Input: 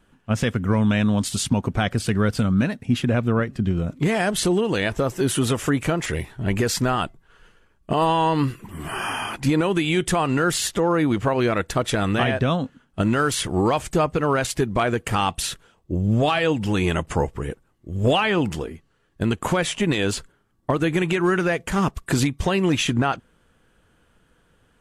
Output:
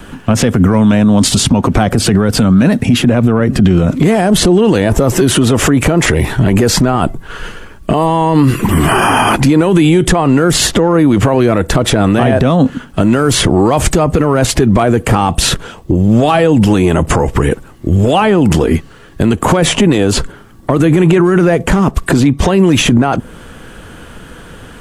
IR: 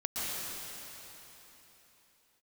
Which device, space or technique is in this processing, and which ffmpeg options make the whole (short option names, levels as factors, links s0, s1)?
mastering chain: -filter_complex "[0:a]equalizer=f=260:t=o:w=0.77:g=2,acrossover=split=200|1100|7400[s0][s1][s2][s3];[s0]acompressor=threshold=0.0447:ratio=4[s4];[s1]acompressor=threshold=0.0891:ratio=4[s5];[s2]acompressor=threshold=0.0112:ratio=4[s6];[s3]acompressor=threshold=0.00398:ratio=4[s7];[s4][s5][s6][s7]amix=inputs=4:normalize=0,acompressor=threshold=0.0501:ratio=2.5,asoftclip=type=tanh:threshold=0.178,alimiter=level_in=26.6:limit=0.891:release=50:level=0:latency=1,asettb=1/sr,asplit=3[s8][s9][s10];[s8]atrim=end=20.854[s11];[s9]atrim=start=20.85:end=22.6,asetpts=PTS-STARTPTS,afade=t=in:d=0.004:c=qsin,afade=t=out:st=1.746:d=0.004:c=qsin,highshelf=f=7300:g=-5[s12];[s10]atrim=start=22.596[s13];[s11][s12]acrossfade=d=0.004:c1=hsin:c2=qsin[s14];[s14][s13]acrossfade=d=0.004:c1=qsin:c2=hsin,volume=0.891"